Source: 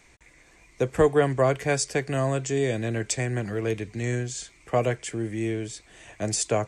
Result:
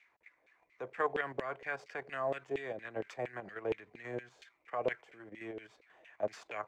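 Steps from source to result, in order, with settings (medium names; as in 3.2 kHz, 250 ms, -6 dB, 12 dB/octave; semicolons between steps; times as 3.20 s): median filter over 5 samples; level held to a coarse grid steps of 9 dB; LFO band-pass saw down 4.3 Hz 480–2600 Hz; loudspeaker Doppler distortion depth 0.11 ms; trim +1 dB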